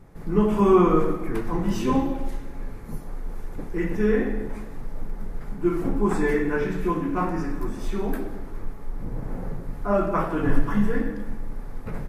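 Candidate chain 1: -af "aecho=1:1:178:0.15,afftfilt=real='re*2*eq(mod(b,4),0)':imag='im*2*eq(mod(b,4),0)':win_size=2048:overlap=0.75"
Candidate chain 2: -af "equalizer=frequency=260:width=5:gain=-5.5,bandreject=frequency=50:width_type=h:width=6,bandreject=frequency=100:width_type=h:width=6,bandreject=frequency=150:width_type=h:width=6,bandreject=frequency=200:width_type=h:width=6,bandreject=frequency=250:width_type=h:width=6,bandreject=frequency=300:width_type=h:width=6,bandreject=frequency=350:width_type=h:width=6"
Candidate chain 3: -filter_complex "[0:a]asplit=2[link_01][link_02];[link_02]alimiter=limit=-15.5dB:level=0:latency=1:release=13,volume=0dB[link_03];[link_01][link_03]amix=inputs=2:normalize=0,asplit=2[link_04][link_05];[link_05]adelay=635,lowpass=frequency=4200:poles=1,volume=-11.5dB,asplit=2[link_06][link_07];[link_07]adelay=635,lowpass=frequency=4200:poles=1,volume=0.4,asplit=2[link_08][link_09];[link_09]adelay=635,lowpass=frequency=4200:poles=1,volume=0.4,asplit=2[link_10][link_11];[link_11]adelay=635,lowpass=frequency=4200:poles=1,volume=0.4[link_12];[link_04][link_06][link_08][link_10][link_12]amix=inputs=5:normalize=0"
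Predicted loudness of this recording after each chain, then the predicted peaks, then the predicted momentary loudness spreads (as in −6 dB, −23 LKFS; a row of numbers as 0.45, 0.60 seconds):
−27.0, −26.0, −20.5 LKFS; −6.5, −7.0, −3.5 dBFS; 20, 16, 13 LU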